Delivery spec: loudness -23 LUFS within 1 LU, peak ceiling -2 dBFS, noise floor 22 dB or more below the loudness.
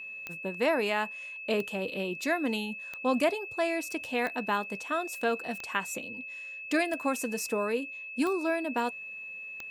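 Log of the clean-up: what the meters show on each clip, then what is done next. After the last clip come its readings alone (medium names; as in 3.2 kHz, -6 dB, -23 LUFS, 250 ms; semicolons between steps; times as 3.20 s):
clicks found 8; steady tone 2.6 kHz; tone level -39 dBFS; loudness -31.5 LUFS; peak level -13.5 dBFS; loudness target -23.0 LUFS
-> de-click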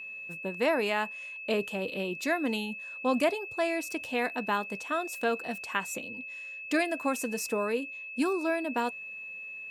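clicks found 0; steady tone 2.6 kHz; tone level -39 dBFS
-> band-stop 2.6 kHz, Q 30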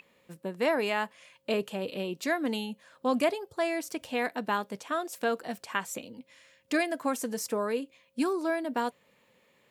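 steady tone not found; loudness -31.5 LUFS; peak level -14.0 dBFS; loudness target -23.0 LUFS
-> trim +8.5 dB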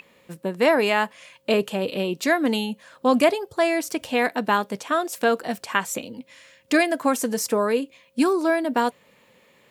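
loudness -23.0 LUFS; peak level -5.5 dBFS; noise floor -59 dBFS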